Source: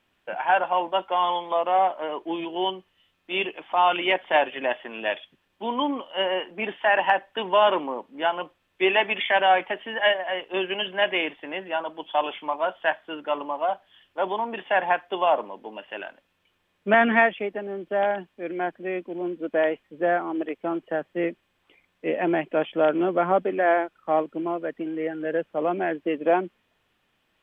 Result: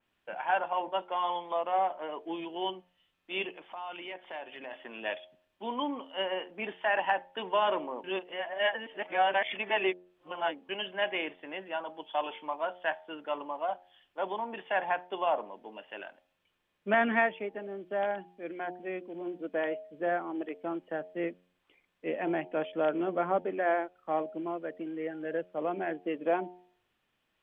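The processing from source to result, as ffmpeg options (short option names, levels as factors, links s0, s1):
-filter_complex "[0:a]asettb=1/sr,asplit=3[s0][s1][s2];[s0]atrim=end=3.554[s3];[s1]atrim=start=3.55:end=4.73,asetpts=PTS-STARTPTS,afade=t=in:d=0.004:c=qsin,afade=t=out:st=1.176:d=0.004:c=qsin,acompressor=threshold=0.0178:ratio=2.5:attack=3.2:release=140:knee=1:detection=peak[s4];[s2]atrim=start=4.726[s5];[s3][s4]acrossfade=d=0.004:c1=hsin:c2=qsin[s6];[s6][s5]acrossfade=d=0.004:c1=qsin:c2=hsin,asplit=3[s7][s8][s9];[s7]atrim=end=8.042[s10];[s8]atrim=start=8.038:end=10.692,asetpts=PTS-STARTPTS,areverse[s11];[s9]atrim=start=10.688[s12];[s10][s11]acrossfade=d=0.004:c1=hsin:c2=hsin[s13];[s13][s12]acrossfade=d=0.004:c1=hsin:c2=hsin,bandreject=f=89.87:t=h:w=4,bandreject=f=179.74:t=h:w=4,bandreject=f=269.61:t=h:w=4,bandreject=f=359.48:t=h:w=4,bandreject=f=449.35:t=h:w=4,bandreject=f=539.22:t=h:w=4,bandreject=f=629.09:t=h:w=4,bandreject=f=718.96:t=h:w=4,bandreject=f=808.83:t=h:w=4,bandreject=f=898.7:t=h:w=4,adynamicequalizer=threshold=0.0126:dfrequency=3100:dqfactor=0.7:tfrequency=3100:tqfactor=0.7:attack=5:release=100:ratio=0.375:range=3:mode=cutabove:tftype=highshelf,volume=0.422"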